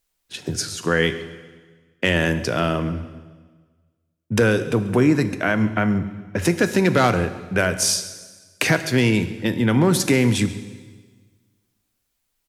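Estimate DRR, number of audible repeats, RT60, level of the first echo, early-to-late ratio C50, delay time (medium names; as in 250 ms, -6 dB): 10.5 dB, 1, 1.4 s, -19.5 dB, 12.0 dB, 137 ms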